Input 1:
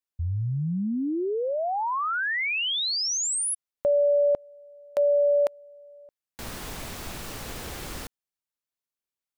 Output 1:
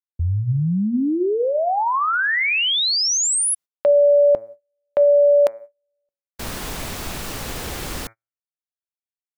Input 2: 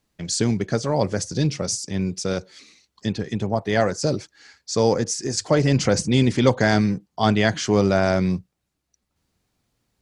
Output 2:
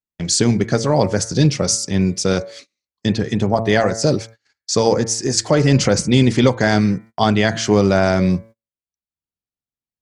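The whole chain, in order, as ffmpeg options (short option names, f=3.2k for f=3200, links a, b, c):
-af "bandreject=f=112.6:t=h:w=4,bandreject=f=225.2:t=h:w=4,bandreject=f=337.8:t=h:w=4,bandreject=f=450.4:t=h:w=4,bandreject=f=563:t=h:w=4,bandreject=f=675.6:t=h:w=4,bandreject=f=788.2:t=h:w=4,bandreject=f=900.8:t=h:w=4,bandreject=f=1.0134k:t=h:w=4,bandreject=f=1.126k:t=h:w=4,bandreject=f=1.2386k:t=h:w=4,bandreject=f=1.3512k:t=h:w=4,bandreject=f=1.4638k:t=h:w=4,bandreject=f=1.5764k:t=h:w=4,bandreject=f=1.689k:t=h:w=4,bandreject=f=1.8016k:t=h:w=4,bandreject=f=1.9142k:t=h:w=4,bandreject=f=2.0268k:t=h:w=4,bandreject=f=2.1394k:t=h:w=4,bandreject=f=2.252k:t=h:w=4,bandreject=f=2.3646k:t=h:w=4,alimiter=limit=-10dB:level=0:latency=1:release=493,agate=range=-34dB:threshold=-44dB:ratio=16:release=234:detection=peak,volume=7.5dB"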